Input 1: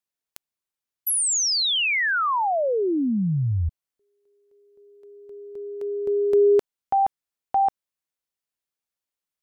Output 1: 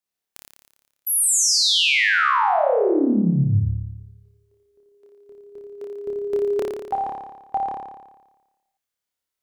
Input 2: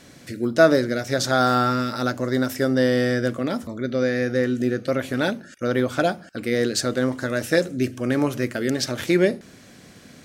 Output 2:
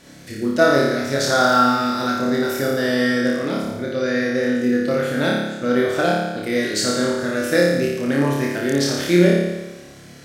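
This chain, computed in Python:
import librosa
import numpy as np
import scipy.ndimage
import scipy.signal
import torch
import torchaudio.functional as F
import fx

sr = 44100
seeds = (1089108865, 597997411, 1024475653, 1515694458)

y = fx.room_flutter(x, sr, wall_m=4.9, rt60_s=1.1)
y = F.gain(torch.from_numpy(y), -1.0).numpy()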